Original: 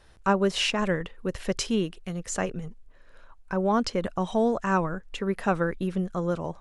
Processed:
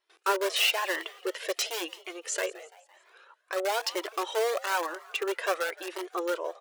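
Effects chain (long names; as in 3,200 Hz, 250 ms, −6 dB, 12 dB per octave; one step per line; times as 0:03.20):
noise gate with hold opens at −46 dBFS
parametric band 2,800 Hz +6.5 dB 1.5 octaves
in parallel at −5 dB: wrap-around overflow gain 19.5 dB
on the sum: linear-phase brick-wall high-pass 320 Hz
on a send: echo with shifted repeats 169 ms, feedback 50%, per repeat +79 Hz, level −20 dB
on the sum: flanger whose copies keep moving one way rising 1 Hz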